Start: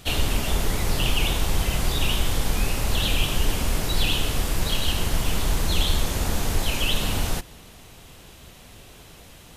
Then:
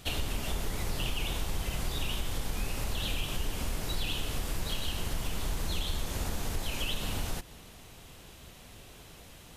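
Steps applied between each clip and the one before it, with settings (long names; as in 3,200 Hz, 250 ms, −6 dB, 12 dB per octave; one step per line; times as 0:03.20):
downward compressor 2.5 to 1, threshold −26 dBFS, peak gain reduction 8.5 dB
level −4.5 dB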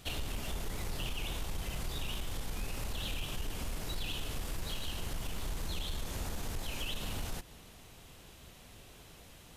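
soft clipping −24.5 dBFS, distortion −20 dB
level −3.5 dB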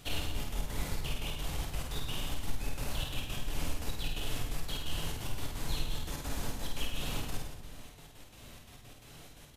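gate pattern "xxx.x.x." 173 BPM
reverse bouncing-ball delay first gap 50 ms, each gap 1.1×, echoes 5
on a send at −4.5 dB: convolution reverb RT60 1.0 s, pre-delay 7 ms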